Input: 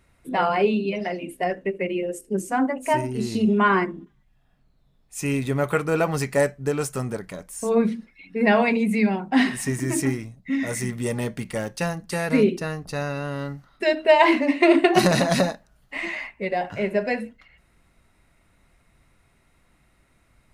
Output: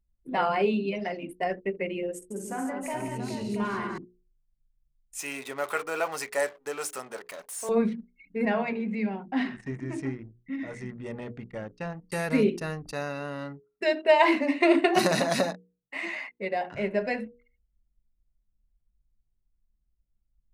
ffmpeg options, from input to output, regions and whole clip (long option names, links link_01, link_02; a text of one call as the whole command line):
ffmpeg -i in.wav -filter_complex "[0:a]asettb=1/sr,asplit=3[link_01][link_02][link_03];[link_01]atrim=end=2.164[link_04];[link_02]atrim=start=2.16:end=3.98,asetpts=PTS-STARTPTS,afade=type=in:duration=0.004:curve=qsin,afade=type=out:start_time=1.816:duration=0.004:curve=qsin,volume=12dB,asoftclip=hard,volume=-12dB,acompressor=threshold=-31dB:ratio=2.5:attack=3.2:release=140:knee=1:detection=peak,aecho=1:1:49|68|143|198|422|681:0.447|0.316|0.447|0.531|0.398|0.398,atrim=end_sample=80262[link_05];[link_03]atrim=start=3.976[link_06];[link_04][link_05]acrossfade=duration=0.004:curve1=hsin:curve2=qsin[link_07];[link_07][link_06]acrossfade=duration=0.004:curve1=qsin:curve2=hsin,asettb=1/sr,asplit=3[link_08][link_09][link_10];[link_08]atrim=end=5.194[link_11];[link_09]atrim=start=5.19:end=7.69,asetpts=PTS-STARTPTS,afade=type=in:duration=0.004:curve=qsin,afade=type=out:start_time=2.496:duration=0.004:curve=qsin,aeval=exprs='val(0)+0.5*0.0168*sgn(val(0))':channel_layout=same,highpass=590[link_12];[link_10]atrim=start=7.686[link_13];[link_11][link_12]acrossfade=duration=0.004:curve1=hsin:curve2=qsin[link_14];[link_14][link_13]acrossfade=duration=0.004:curve1=qsin:curve2=hsin,asettb=1/sr,asplit=3[link_15][link_16][link_17];[link_15]atrim=end=8.454[link_18];[link_16]atrim=start=8.45:end=12.12,asetpts=PTS-STARTPTS,afade=type=in:duration=0.004:curve=qsin,afade=type=out:start_time=3.666:duration=0.004:curve=qsin,adynamicsmooth=sensitivity=1.5:basefreq=7700,aemphasis=mode=reproduction:type=50kf,flanger=delay=6:depth=6.2:regen=-89:speed=1.3:shape=triangular[link_19];[link_17]atrim=start=12.116[link_20];[link_18][link_19]acrossfade=duration=0.004:curve1=hsin:curve2=qsin[link_21];[link_21][link_20]acrossfade=duration=0.004:curve1=qsin:curve2=hsin,asettb=1/sr,asplit=3[link_22][link_23][link_24];[link_22]atrim=end=12.914[link_25];[link_23]atrim=start=12.91:end=16.75,asetpts=PTS-STARTPTS,afade=type=in:duration=0.004:curve=qsin,afade=type=out:start_time=3.836:duration=0.004:curve=qsin,highpass=190,bandreject=frequency=3200:width=21[link_26];[link_24]atrim=start=16.746[link_27];[link_25][link_26]acrossfade=duration=0.004:curve1=hsin:curve2=qsin[link_28];[link_28][link_27]acrossfade=duration=0.004:curve1=qsin:curve2=hsin,anlmdn=0.251,bandreject=frequency=60:width_type=h:width=6,bandreject=frequency=120:width_type=h:width=6,bandreject=frequency=180:width_type=h:width=6,bandreject=frequency=240:width_type=h:width=6,bandreject=frequency=300:width_type=h:width=6,bandreject=frequency=360:width_type=h:width=6,bandreject=frequency=420:width_type=h:width=6,bandreject=frequency=480:width_type=h:width=6,volume=-4dB" out.wav